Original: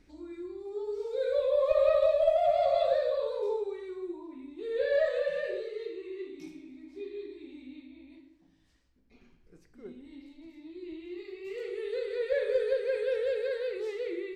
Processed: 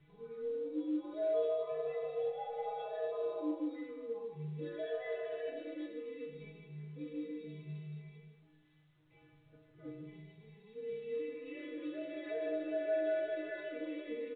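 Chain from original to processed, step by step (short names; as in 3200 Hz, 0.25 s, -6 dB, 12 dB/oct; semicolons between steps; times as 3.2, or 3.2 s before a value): compressor 6:1, threshold -28 dBFS, peak gain reduction 8.5 dB; limiter -29.5 dBFS, peak gain reduction 8 dB; ring modulator 110 Hz; metallic resonator 150 Hz, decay 0.59 s, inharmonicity 0.008; feedback echo 0.151 s, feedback 17%, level -9.5 dB; gain +14 dB; µ-law 64 kbps 8000 Hz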